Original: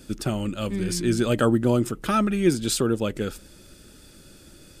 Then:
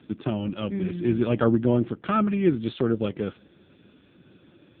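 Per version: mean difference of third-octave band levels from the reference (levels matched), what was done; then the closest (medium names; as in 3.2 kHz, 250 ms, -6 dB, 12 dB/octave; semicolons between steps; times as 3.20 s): 8.0 dB: high-pass 69 Hz 12 dB/octave; AMR-NB 5.9 kbps 8 kHz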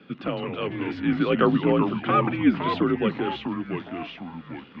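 12.0 dB: ever faster or slower copies 118 ms, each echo -3 st, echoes 3, each echo -6 dB; mistuned SSB -78 Hz 290–3200 Hz; trim +2.5 dB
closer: first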